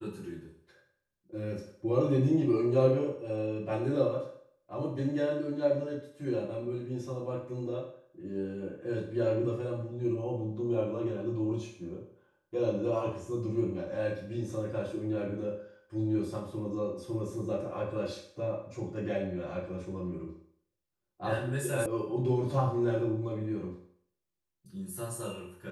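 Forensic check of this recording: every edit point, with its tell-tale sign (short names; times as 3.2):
21.86 sound cut off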